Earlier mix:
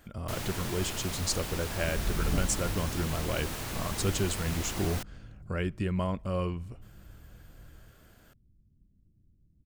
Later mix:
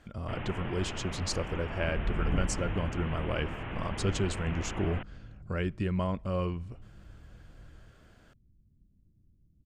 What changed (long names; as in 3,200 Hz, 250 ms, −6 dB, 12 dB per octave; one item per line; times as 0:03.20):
first sound: add Butterworth low-pass 3,100 Hz 72 dB per octave
master: add high-frequency loss of the air 69 metres